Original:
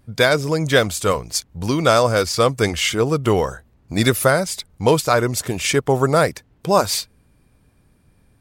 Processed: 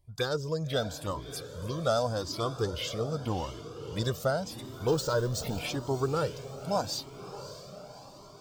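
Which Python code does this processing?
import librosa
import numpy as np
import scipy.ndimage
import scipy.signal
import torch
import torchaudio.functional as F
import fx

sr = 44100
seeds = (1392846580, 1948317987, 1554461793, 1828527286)

y = fx.zero_step(x, sr, step_db=-21.5, at=(4.87, 5.59))
y = fx.env_phaser(y, sr, low_hz=240.0, high_hz=2200.0, full_db=-15.5)
y = fx.echo_diffused(y, sr, ms=601, feedback_pct=58, wet_db=-12.5)
y = fx.comb_cascade(y, sr, direction='rising', hz=0.85)
y = y * 10.0 ** (-7.5 / 20.0)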